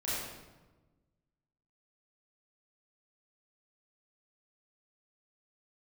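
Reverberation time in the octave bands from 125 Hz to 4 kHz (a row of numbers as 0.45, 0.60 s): 1.8, 1.6, 1.3, 1.1, 0.95, 0.80 s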